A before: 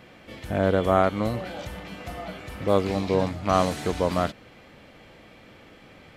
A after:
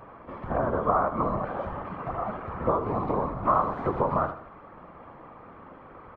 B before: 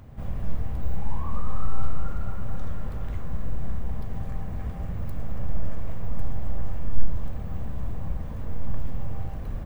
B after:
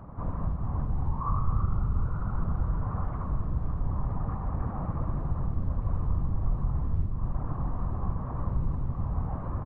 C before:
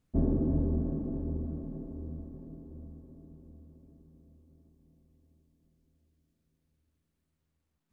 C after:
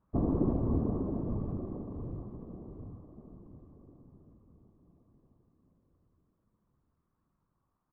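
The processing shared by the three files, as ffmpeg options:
-af "acompressor=threshold=-24dB:ratio=10,lowpass=f=1.1k:t=q:w=4.9,afftfilt=real='hypot(re,im)*cos(2*PI*random(0))':imag='hypot(re,im)*sin(2*PI*random(1))':win_size=512:overlap=0.75,aecho=1:1:79|158|237|316:0.282|0.116|0.0474|0.0194,volume=6dB"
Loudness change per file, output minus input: -2.5, +3.0, -1.0 LU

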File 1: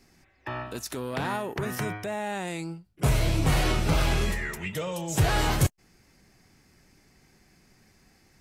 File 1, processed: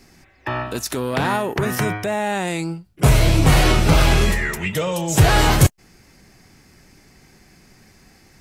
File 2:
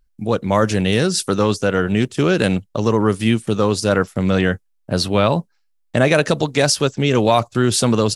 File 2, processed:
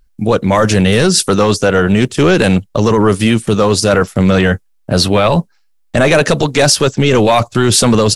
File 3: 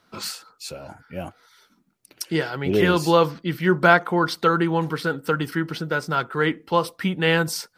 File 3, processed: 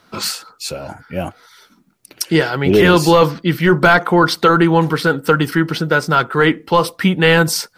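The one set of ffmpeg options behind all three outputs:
-af "apsyclip=13.5dB,volume=-4dB"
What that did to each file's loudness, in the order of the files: +9.5, +6.0, +7.5 LU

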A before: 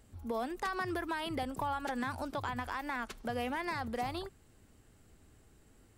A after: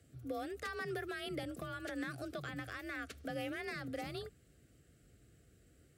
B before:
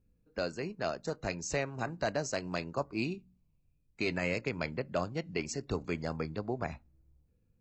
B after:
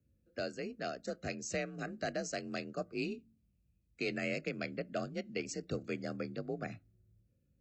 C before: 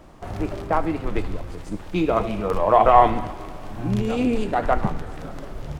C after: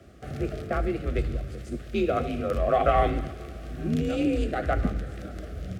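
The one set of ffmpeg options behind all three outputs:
-af "afreqshift=40,asuperstop=centerf=940:order=4:qfactor=1.8,volume=-3.5dB"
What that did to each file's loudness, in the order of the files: -5.5, -4.0, -6.0 LU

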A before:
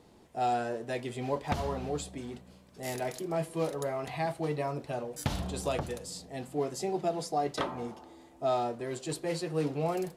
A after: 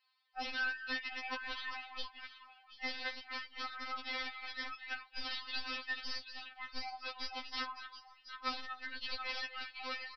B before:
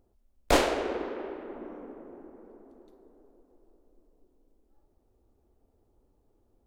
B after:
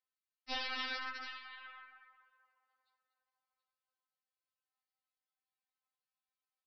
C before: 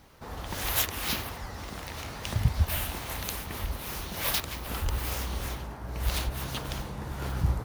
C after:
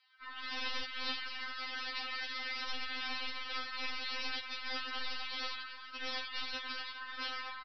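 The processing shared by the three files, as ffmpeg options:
-af "highpass=f=1.3k:w=0.5412,highpass=f=1.3k:w=1.3066,afftdn=nr=14:nf=-51,acompressor=threshold=-41dB:ratio=5,aecho=1:1:239|729:0.237|0.251,aeval=exprs='0.0891*(cos(1*acos(clip(val(0)/0.0891,-1,1)))-cos(1*PI/2))+0.00316*(cos(2*acos(clip(val(0)/0.0891,-1,1)))-cos(2*PI/2))+0.0355*(cos(4*acos(clip(val(0)/0.0891,-1,1)))-cos(4*PI/2))':c=same,aresample=11025,aeval=exprs='(mod(75*val(0)+1,2)-1)/75':c=same,aresample=44100,afftfilt=real='re*3.46*eq(mod(b,12),0)':imag='im*3.46*eq(mod(b,12),0)':win_size=2048:overlap=0.75,volume=9.5dB"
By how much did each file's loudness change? -7.0, -10.5, -7.0 LU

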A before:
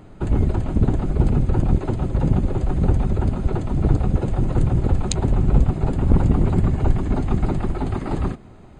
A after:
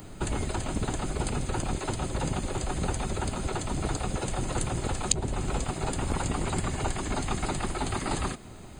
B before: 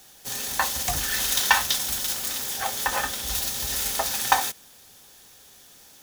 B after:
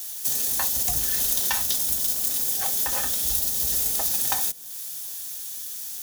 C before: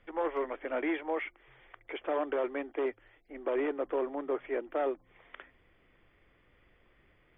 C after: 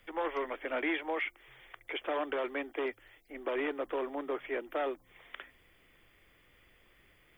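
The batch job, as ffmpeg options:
-filter_complex "[0:a]crystalizer=i=2:c=0,highshelf=f=2.6k:g=8,acrossover=split=290|690[a][b][c];[a]acompressor=threshold=-30dB:ratio=4[d];[b]acompressor=threshold=-36dB:ratio=4[e];[c]acompressor=threshold=-23dB:ratio=4[f];[d][e][f]amix=inputs=3:normalize=0,volume=-1dB"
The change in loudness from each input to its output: -9.5, +1.5, -1.5 LU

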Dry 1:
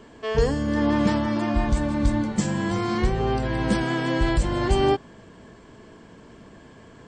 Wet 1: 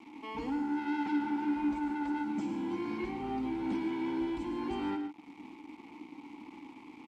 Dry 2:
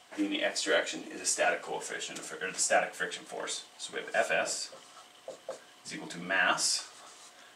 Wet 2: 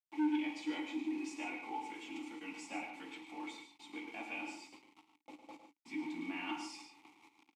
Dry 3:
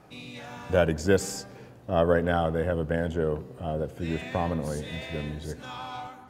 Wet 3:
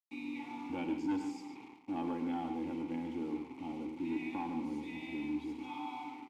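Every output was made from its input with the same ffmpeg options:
-filter_complex "[0:a]highshelf=f=2.1k:g=3,aecho=1:1:3.6:0.5,asplit=2[a][b];[b]acompressor=threshold=-35dB:ratio=6,volume=1dB[c];[a][c]amix=inputs=2:normalize=0,acrusher=bits=5:mix=0:aa=0.000001,asplit=3[d][e][f];[d]bandpass=f=300:t=q:w=8,volume=0dB[g];[e]bandpass=f=870:t=q:w=8,volume=-6dB[h];[f]bandpass=f=2.24k:t=q:w=8,volume=-9dB[i];[g][h][i]amix=inputs=3:normalize=0,acrossover=split=3400[j][k];[j]asoftclip=type=tanh:threshold=-29.5dB[l];[l][k]amix=inputs=2:normalize=0,aecho=1:1:53|107|145:0.211|0.335|0.282,aresample=32000,aresample=44100"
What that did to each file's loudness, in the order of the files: -11.0, -10.5, -11.0 LU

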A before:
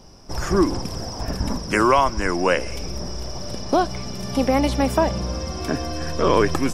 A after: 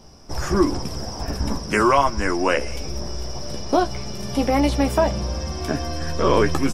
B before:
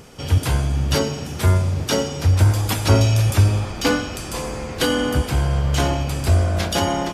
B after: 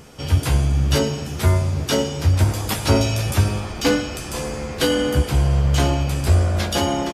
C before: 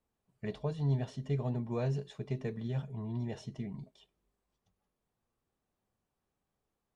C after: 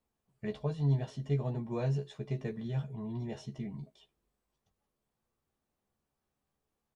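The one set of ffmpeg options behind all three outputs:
-filter_complex "[0:a]asplit=2[a][b];[b]adelay=14,volume=-6dB[c];[a][c]amix=inputs=2:normalize=0,volume=-1dB"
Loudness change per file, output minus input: 0.0, -0.5, +1.0 LU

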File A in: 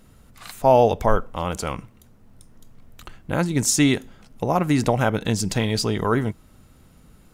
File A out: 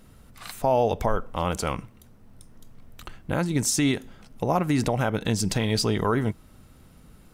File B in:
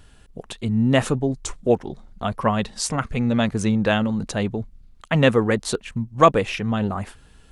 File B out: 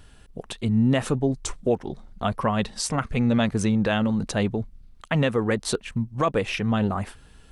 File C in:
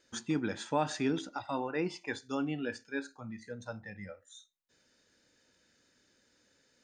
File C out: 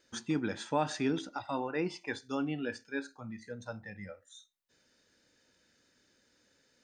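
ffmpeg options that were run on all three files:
-af "alimiter=limit=-12dB:level=0:latency=1:release=170,bandreject=f=6.9k:w=20"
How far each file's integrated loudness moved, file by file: -4.0, -3.0, 0.0 LU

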